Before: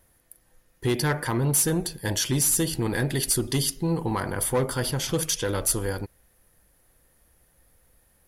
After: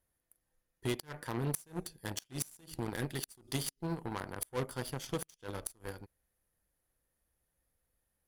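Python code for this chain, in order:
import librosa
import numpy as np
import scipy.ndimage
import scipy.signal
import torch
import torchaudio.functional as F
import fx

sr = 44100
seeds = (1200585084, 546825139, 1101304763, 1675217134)

y = fx.cheby_harmonics(x, sr, harmonics=(3, 4, 5), levels_db=(-8, -38, -25), full_scale_db=-12.5)
y = fx.gate_flip(y, sr, shuts_db=-20.0, range_db=-27)
y = y * 10.0 ** (2.0 / 20.0)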